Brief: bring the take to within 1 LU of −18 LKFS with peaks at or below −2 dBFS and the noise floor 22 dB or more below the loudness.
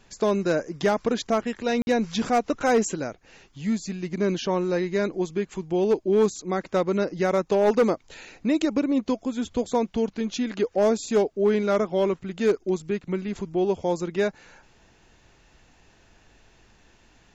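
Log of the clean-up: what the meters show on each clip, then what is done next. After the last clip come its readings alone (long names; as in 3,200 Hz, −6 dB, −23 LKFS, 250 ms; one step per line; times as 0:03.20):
share of clipped samples 0.6%; peaks flattened at −14.0 dBFS; number of dropouts 1; longest dropout 51 ms; integrated loudness −25.0 LKFS; sample peak −14.0 dBFS; target loudness −18.0 LKFS
→ clipped peaks rebuilt −14 dBFS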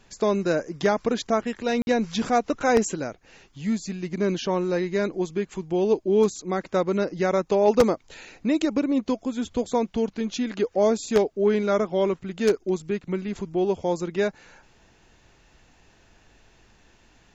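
share of clipped samples 0.0%; number of dropouts 1; longest dropout 51 ms
→ repair the gap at 0:01.82, 51 ms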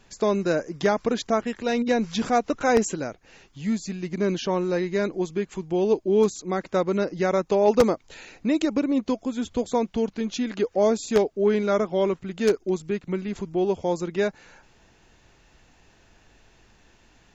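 number of dropouts 0; integrated loudness −24.5 LKFS; sample peak −5.0 dBFS; target loudness −18.0 LKFS
→ level +6.5 dB
brickwall limiter −2 dBFS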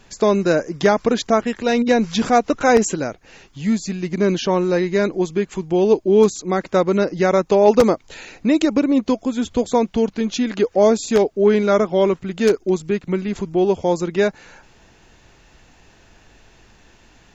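integrated loudness −18.5 LKFS; sample peak −2.0 dBFS; background noise floor −52 dBFS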